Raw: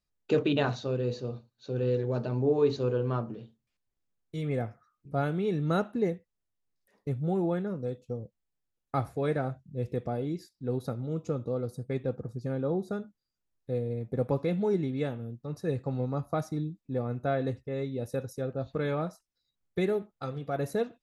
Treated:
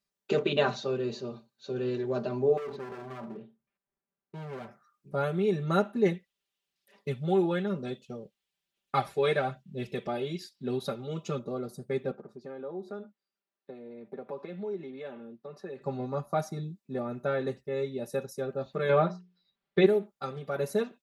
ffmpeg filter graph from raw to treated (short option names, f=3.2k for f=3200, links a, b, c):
-filter_complex "[0:a]asettb=1/sr,asplit=3[a][b][c];[a]atrim=end=2.574[d];[b]atrim=start=2.57:end=4.68,asetpts=PTS-STARTPTS,afade=t=in:d=0.004:c=qsin,afade=t=out:st=2.106:d=0.004:c=qsin,lowpass=1.8k,acompressor=threshold=-29dB:ratio=8:attack=3.2:release=140:knee=1:detection=peak,asoftclip=type=hard:threshold=-37dB[e];[c]atrim=start=4.676[f];[d][e]acrossfade=d=0.004:c1=hsin:c2=qsin[g];[g][f]acrossfade=d=0.004:c1=qsin:c2=hsin,asettb=1/sr,asplit=3[h][i][j];[h]atrim=end=6.054[k];[i]atrim=start=6.05:end=11.39,asetpts=PTS-STARTPTS,afade=t=in:d=0.004:c=qsin,afade=t=out:st=5.336:d=0.004:c=qsin,equalizer=f=3.1k:w=1.1:g=12,aphaser=in_gain=1:out_gain=1:delay=2.5:decay=0.28:speed=1.1:type=sinusoidal[l];[j]atrim=start=11.386[m];[k][l]acrossfade=d=0.004:c1=hsin:c2=qsin[n];[n][m]acrossfade=d=0.004:c1=qsin:c2=hsin,asettb=1/sr,asplit=3[o][p][q];[o]atrim=end=12.114[r];[p]atrim=start=12.11:end=15.82,asetpts=PTS-STARTPTS,afade=t=in:d=0.004:c=qsin,afade=t=out:st=3.706:d=0.004:c=qsin,acrossover=split=200 4200:gain=0.126 1 0.141[s][t][u];[s][t][u]amix=inputs=3:normalize=0,acompressor=threshold=-40dB:ratio=2.5:attack=3.2:release=140:knee=1:detection=peak[v];[q]atrim=start=15.816[w];[r][v]acrossfade=d=0.004:c1=hsin:c2=qsin[x];[x][w]acrossfade=d=0.004:c1=qsin:c2=hsin,asettb=1/sr,asplit=3[y][z][aa];[y]atrim=end=18.894[ab];[z]atrim=start=18.89:end=19.86,asetpts=PTS-STARTPTS,afade=t=in:d=0.004:c=qsin,afade=t=out:st=0.966:d=0.004:c=qsin,lowpass=f=4.1k:w=0.5412,lowpass=f=4.1k:w=1.3066,bandreject=f=60:t=h:w=6,bandreject=f=120:t=h:w=6,bandreject=f=180:t=h:w=6,bandreject=f=240:t=h:w=6,bandreject=f=300:t=h:w=6,bandreject=f=360:t=h:w=6,bandreject=f=420:t=h:w=6,acontrast=52[ac];[aa]atrim=start=19.856[ad];[ab][ac]acrossfade=d=0.004:c1=hsin:c2=qsin[ae];[ae][ad]acrossfade=d=0.004:c1=qsin:c2=hsin,highpass=f=250:p=1,aecho=1:1:5.1:0.95"